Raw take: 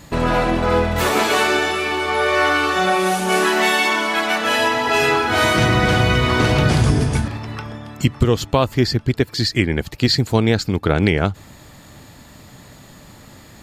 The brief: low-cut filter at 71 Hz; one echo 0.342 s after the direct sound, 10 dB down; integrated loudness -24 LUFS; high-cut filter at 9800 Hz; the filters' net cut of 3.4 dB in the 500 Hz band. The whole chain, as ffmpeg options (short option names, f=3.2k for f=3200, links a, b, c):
-af "highpass=71,lowpass=9.8k,equalizer=f=500:t=o:g=-4.5,aecho=1:1:342:0.316,volume=-6dB"